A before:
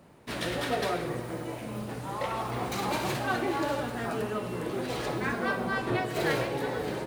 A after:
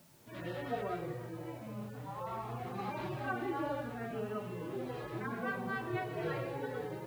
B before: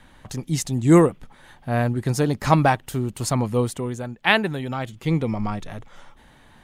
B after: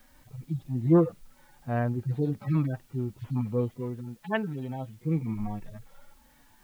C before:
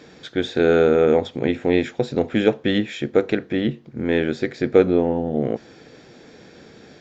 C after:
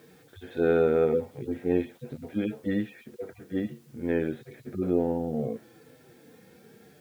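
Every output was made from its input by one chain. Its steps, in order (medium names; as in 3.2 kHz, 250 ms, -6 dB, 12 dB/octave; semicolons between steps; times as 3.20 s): harmonic-percussive separation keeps harmonic; distance through air 230 m; word length cut 10-bit, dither triangular; trim -5.5 dB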